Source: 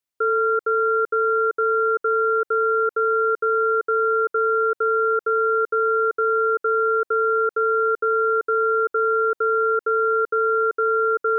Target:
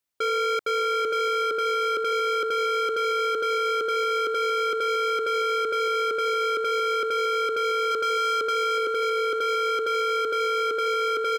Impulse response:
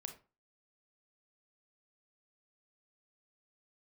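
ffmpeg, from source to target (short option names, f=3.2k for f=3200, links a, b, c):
-filter_complex "[0:a]asettb=1/sr,asplit=3[a][b][c];[a]atrim=end=7.914[d];[b]atrim=start=7.91:end=8.78,asetpts=PTS-STARTPTS,afade=t=in:d=0.004:c=qsin,afade=t=out:st=0.866:d=0.004:c=qsin,equalizer=f=1.1k:w=7.7:g=14.5[e];[c]atrim=start=8.776[f];[d][e]acrossfade=d=0.004:c1=hsin:c2=qsin[g];[g][f]acrossfade=d=0.004:c1=qsin:c2=hsin,asplit=2[h][i];[i]adelay=611,lowpass=f=870:p=1,volume=-5dB,asplit=2[j][k];[k]adelay=611,lowpass=f=870:p=1,volume=0.45,asplit=2[l][m];[m]adelay=611,lowpass=f=870:p=1,volume=0.45,asplit=2[n][o];[o]adelay=611,lowpass=f=870:p=1,volume=0.45,asplit=2[p][q];[q]adelay=611,lowpass=f=870:p=1,volume=0.45,asplit=2[r][s];[s]adelay=611,lowpass=f=870:p=1,volume=0.45[t];[h][j][l][n][p][r][t]amix=inputs=7:normalize=0,asoftclip=type=hard:threshold=-25.5dB,volume=2.5dB"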